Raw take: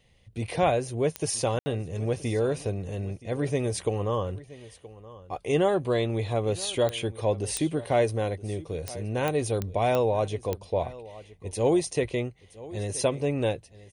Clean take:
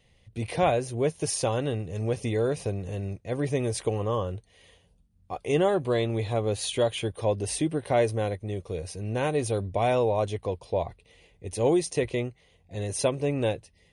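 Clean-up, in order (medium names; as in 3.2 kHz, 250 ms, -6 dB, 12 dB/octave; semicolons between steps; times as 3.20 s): de-click; room tone fill 1.59–1.66 s; inverse comb 973 ms -18.5 dB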